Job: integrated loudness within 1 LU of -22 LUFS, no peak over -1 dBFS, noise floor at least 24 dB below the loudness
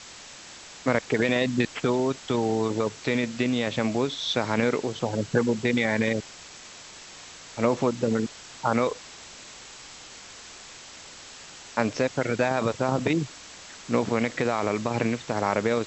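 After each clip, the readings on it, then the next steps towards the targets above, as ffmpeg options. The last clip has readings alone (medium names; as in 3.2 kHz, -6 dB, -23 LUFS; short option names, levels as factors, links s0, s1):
noise floor -45 dBFS; noise floor target -50 dBFS; loudness -26.0 LUFS; peak level -6.0 dBFS; loudness target -22.0 LUFS
-> -af "afftdn=nr=6:nf=-45"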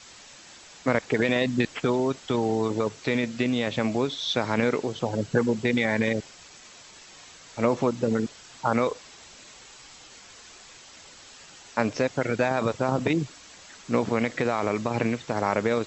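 noise floor -49 dBFS; noise floor target -51 dBFS
-> -af "afftdn=nr=6:nf=-49"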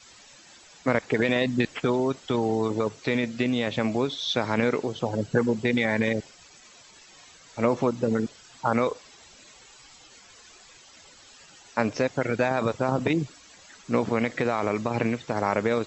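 noise floor -52 dBFS; loudness -26.5 LUFS; peak level -6.0 dBFS; loudness target -22.0 LUFS
-> -af "volume=1.68"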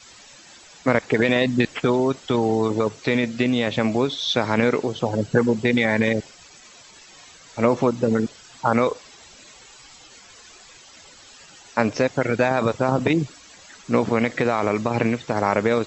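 loudness -22.0 LUFS; peak level -1.5 dBFS; noise floor -48 dBFS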